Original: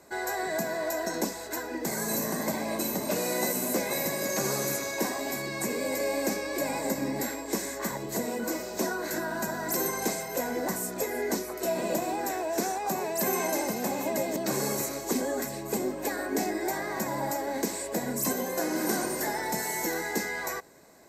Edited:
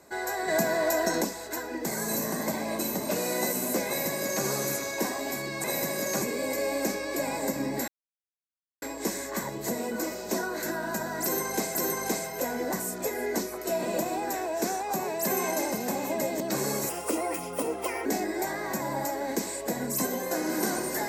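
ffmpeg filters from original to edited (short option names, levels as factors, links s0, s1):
-filter_complex "[0:a]asplit=9[s0][s1][s2][s3][s4][s5][s6][s7][s8];[s0]atrim=end=0.482[s9];[s1]atrim=start=0.478:end=1.222,asetpts=PTS-STARTPTS,volume=1.78[s10];[s2]atrim=start=1.218:end=5.642[s11];[s3]atrim=start=3.868:end=4.452[s12];[s4]atrim=start=5.638:end=7.3,asetpts=PTS-STARTPTS,afade=t=out:st=1.658:d=0.004:c=hsin,apad=pad_dur=0.94[s13];[s5]atrim=start=7.3:end=10.232,asetpts=PTS-STARTPTS,afade=t=in:d=0.004:c=hsin[s14];[s6]atrim=start=9.708:end=14.854[s15];[s7]atrim=start=14.85:end=16.32,asetpts=PTS-STARTPTS,asetrate=55566,aresample=44100[s16];[s8]atrim=start=16.316[s17];[s9][s10]acrossfade=d=0.004:c1=hsin:c2=hsin[s18];[s18][s11]acrossfade=d=0.004:c1=hsin:c2=hsin[s19];[s19][s12]acrossfade=d=0.004:c1=hsin:c2=hsin[s20];[s13][s14]concat=n=2:v=0:a=1[s21];[s20][s21]acrossfade=d=0.004:c1=hsin:c2=hsin[s22];[s22][s15]acrossfade=d=0.004:c1=hsin:c2=hsin[s23];[s23][s16]acrossfade=d=0.004:c1=hsin:c2=hsin[s24];[s24][s17]acrossfade=d=0.004:c1=hsin:c2=hsin"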